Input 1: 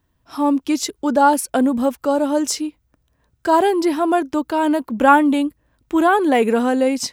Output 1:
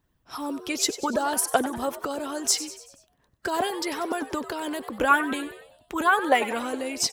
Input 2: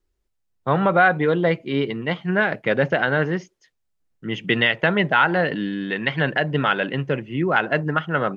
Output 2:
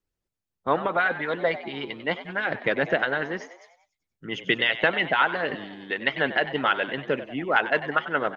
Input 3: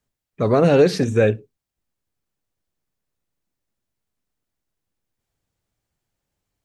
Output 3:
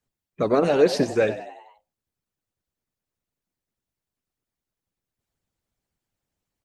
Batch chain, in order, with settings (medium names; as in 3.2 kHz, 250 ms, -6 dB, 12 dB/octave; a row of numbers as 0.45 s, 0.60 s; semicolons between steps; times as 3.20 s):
harmonic-percussive split harmonic -16 dB; frequency-shifting echo 95 ms, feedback 53%, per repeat +83 Hz, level -13.5 dB; peak normalisation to -6 dBFS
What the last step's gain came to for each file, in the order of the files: +1.0 dB, -1.0 dB, +0.5 dB